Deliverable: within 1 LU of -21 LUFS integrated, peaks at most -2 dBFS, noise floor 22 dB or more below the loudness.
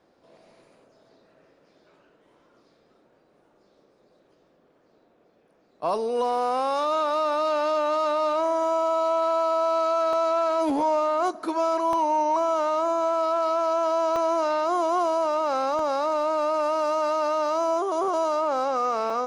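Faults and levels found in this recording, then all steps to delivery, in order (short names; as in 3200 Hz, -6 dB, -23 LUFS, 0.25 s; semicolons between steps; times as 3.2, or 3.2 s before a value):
clipped 0.7%; flat tops at -17.0 dBFS; dropouts 5; longest dropout 2.0 ms; loudness -24.0 LUFS; peak -17.0 dBFS; loudness target -21.0 LUFS
-> clip repair -17 dBFS; interpolate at 10.13/11.93/14.16/15.79/19.1, 2 ms; gain +3 dB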